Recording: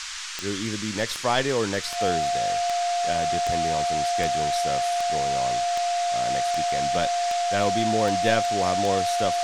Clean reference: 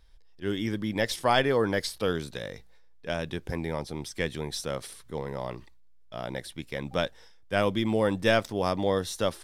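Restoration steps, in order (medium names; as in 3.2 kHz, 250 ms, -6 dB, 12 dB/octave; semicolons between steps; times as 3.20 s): de-click; band-stop 700 Hz, Q 30; noise print and reduce 22 dB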